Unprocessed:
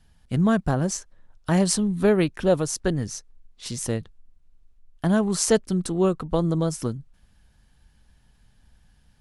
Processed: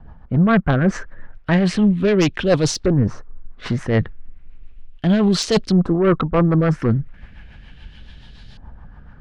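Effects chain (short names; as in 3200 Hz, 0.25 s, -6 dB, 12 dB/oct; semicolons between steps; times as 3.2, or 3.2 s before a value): reverse; compressor 5:1, threshold -29 dBFS, peak gain reduction 14 dB; reverse; LFO low-pass saw up 0.35 Hz 980–4300 Hz; sine folder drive 7 dB, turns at -16.5 dBFS; rotary speaker horn 7 Hz; gain +8 dB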